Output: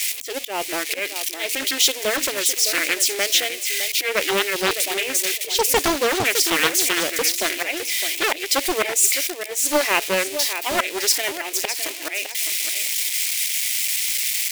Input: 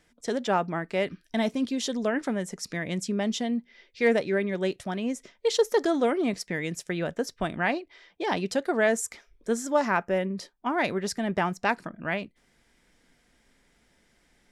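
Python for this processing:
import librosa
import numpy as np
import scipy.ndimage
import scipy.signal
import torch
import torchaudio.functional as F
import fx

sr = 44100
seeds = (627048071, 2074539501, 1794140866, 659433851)

y = x + 0.5 * 10.0 ** (-26.0 / 20.0) * np.diff(np.sign(x), prepend=np.sign(x[:1]))
y = fx.high_shelf_res(y, sr, hz=1800.0, db=8.0, q=3.0)
y = fx.auto_swell(y, sr, attack_ms=199.0)
y = fx.brickwall_highpass(y, sr, low_hz=280.0)
y = fx.echo_feedback(y, sr, ms=610, feedback_pct=19, wet_db=-9.5)
y = fx.doppler_dist(y, sr, depth_ms=0.73)
y = y * 10.0 ** (4.5 / 20.0)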